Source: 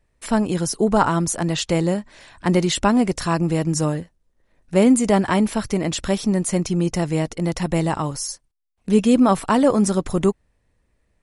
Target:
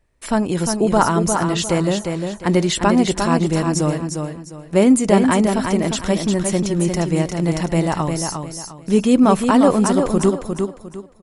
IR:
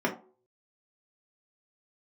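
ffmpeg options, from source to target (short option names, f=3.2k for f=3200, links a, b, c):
-filter_complex "[0:a]aecho=1:1:353|706|1059|1412:0.531|0.154|0.0446|0.0129,asplit=2[a][b];[1:a]atrim=start_sample=2205[c];[b][c]afir=irnorm=-1:irlink=0,volume=-30.5dB[d];[a][d]amix=inputs=2:normalize=0,volume=1dB"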